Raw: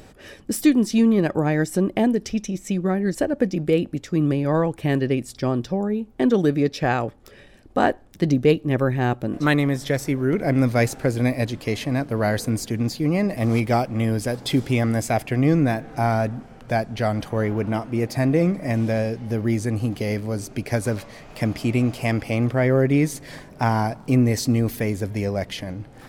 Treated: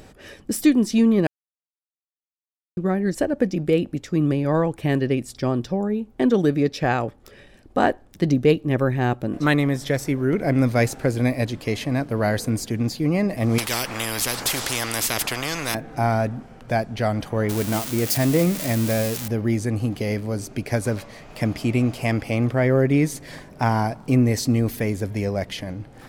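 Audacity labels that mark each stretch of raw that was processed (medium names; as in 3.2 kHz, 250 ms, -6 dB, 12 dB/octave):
1.270000	2.770000	mute
13.580000	15.750000	spectrum-flattening compressor 4:1
17.490000	19.280000	zero-crossing glitches of -15 dBFS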